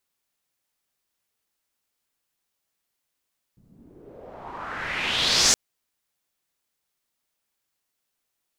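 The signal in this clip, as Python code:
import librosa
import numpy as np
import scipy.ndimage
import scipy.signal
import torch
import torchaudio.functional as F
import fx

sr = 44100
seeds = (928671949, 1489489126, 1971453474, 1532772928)

y = fx.riser_noise(sr, seeds[0], length_s=1.97, colour='white', kind='lowpass', start_hz=160.0, end_hz=6700.0, q=3.1, swell_db=24, law='exponential')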